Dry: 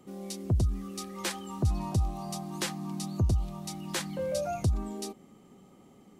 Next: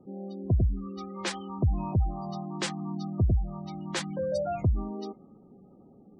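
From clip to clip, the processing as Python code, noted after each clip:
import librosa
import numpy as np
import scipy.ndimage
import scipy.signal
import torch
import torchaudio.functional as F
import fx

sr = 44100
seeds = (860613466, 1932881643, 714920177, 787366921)

y = fx.env_lowpass(x, sr, base_hz=700.0, full_db=-26.5)
y = fx.spec_gate(y, sr, threshold_db=-25, keep='strong')
y = F.gain(torch.from_numpy(y), 2.0).numpy()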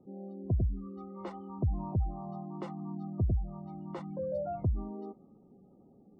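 y = scipy.signal.savgol_filter(x, 65, 4, mode='constant')
y = F.gain(torch.from_numpy(y), -5.0).numpy()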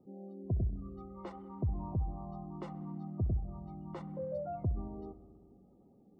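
y = fx.echo_wet_lowpass(x, sr, ms=64, feedback_pct=79, hz=2200.0, wet_db=-17)
y = F.gain(torch.from_numpy(y), -3.5).numpy()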